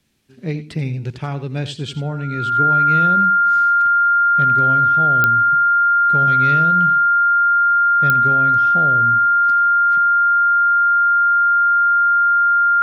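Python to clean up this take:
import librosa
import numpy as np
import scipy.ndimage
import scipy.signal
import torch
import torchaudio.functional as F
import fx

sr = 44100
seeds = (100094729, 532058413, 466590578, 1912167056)

y = fx.fix_declick_ar(x, sr, threshold=10.0)
y = fx.notch(y, sr, hz=1400.0, q=30.0)
y = fx.fix_echo_inverse(y, sr, delay_ms=85, level_db=-13.5)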